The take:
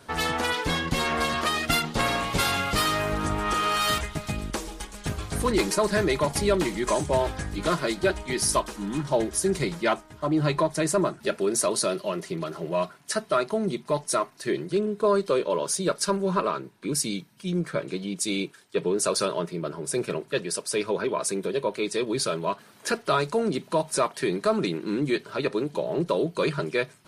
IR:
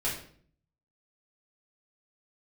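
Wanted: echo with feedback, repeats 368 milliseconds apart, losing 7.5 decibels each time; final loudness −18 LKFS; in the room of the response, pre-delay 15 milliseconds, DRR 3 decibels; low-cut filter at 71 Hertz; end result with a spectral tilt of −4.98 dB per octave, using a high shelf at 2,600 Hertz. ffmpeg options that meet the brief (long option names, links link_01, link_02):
-filter_complex "[0:a]highpass=71,highshelf=frequency=2600:gain=-6.5,aecho=1:1:368|736|1104|1472|1840:0.422|0.177|0.0744|0.0312|0.0131,asplit=2[link_01][link_02];[1:a]atrim=start_sample=2205,adelay=15[link_03];[link_02][link_03]afir=irnorm=-1:irlink=0,volume=-10dB[link_04];[link_01][link_04]amix=inputs=2:normalize=0,volume=7dB"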